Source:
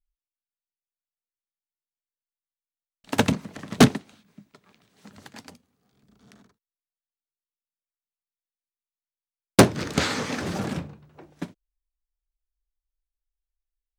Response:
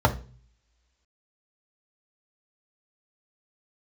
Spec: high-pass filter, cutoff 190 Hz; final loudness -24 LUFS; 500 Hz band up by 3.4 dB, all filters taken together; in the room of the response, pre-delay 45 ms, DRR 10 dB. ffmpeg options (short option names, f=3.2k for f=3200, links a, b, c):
-filter_complex "[0:a]highpass=190,equalizer=f=500:t=o:g=4.5,asplit=2[a][b];[1:a]atrim=start_sample=2205,adelay=45[c];[b][c]afir=irnorm=-1:irlink=0,volume=-27.5dB[d];[a][d]amix=inputs=2:normalize=0,volume=-2dB"